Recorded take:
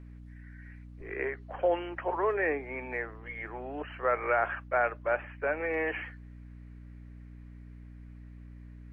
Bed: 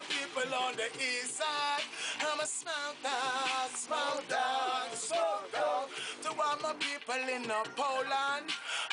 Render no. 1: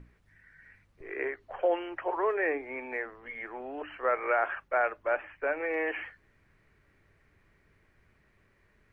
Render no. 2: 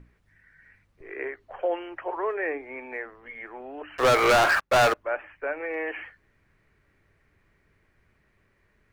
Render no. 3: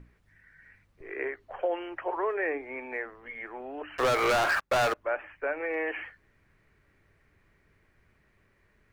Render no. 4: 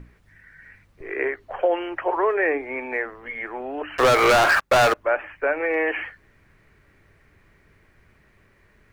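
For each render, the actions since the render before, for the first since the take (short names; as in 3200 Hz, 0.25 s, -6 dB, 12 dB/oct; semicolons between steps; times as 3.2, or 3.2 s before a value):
notches 60/120/180/240/300 Hz
3.98–4.94 sample leveller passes 5
compressor 5:1, threshold -24 dBFS, peak gain reduction 6 dB
gain +8.5 dB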